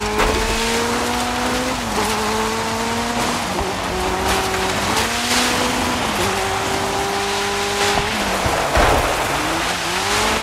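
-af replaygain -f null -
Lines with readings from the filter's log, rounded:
track_gain = +0.3 dB
track_peak = 0.538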